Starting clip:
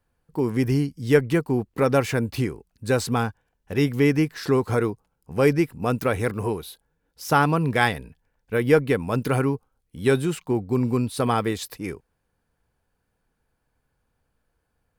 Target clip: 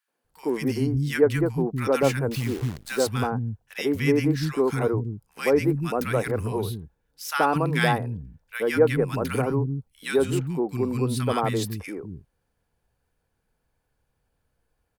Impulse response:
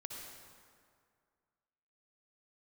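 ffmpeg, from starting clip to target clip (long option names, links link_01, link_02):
-filter_complex "[0:a]acrossover=split=230|1300[link_01][link_02][link_03];[link_02]adelay=80[link_04];[link_01]adelay=240[link_05];[link_05][link_04][link_03]amix=inputs=3:normalize=0,asettb=1/sr,asplit=3[link_06][link_07][link_08];[link_06]atrim=end=2.314[link_09];[link_07]atrim=start=2.31:end=3.07,asetpts=PTS-STARTPTS,afade=type=in:duration=0.004:curve=qsin,afade=type=out:start_time=0.756:duration=0.004:curve=qsin,acrusher=bits=7:dc=4:mix=0:aa=0.000001[link_10];[link_08]atrim=start=3.066[link_11];[link_09][link_10]acrossfade=duration=0.004:curve1=hsin:curve2=qsin[link_12];[link_12][link_11]acrossfade=duration=0.004:curve1=qsin:curve2=hsin"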